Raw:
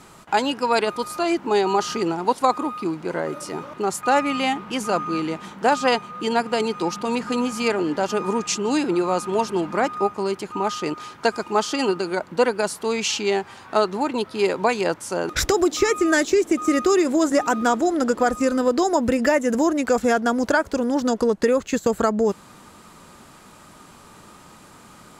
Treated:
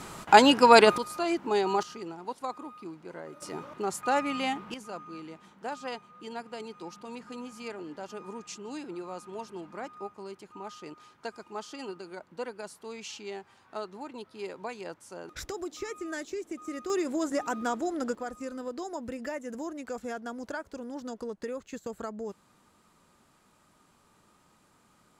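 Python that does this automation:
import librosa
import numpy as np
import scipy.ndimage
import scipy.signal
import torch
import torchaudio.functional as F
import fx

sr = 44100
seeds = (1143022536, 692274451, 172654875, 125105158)

y = fx.gain(x, sr, db=fx.steps((0.0, 4.0), (0.98, -7.0), (1.83, -16.5), (3.42, -8.0), (4.74, -18.0), (16.9, -11.0), (18.15, -17.5)))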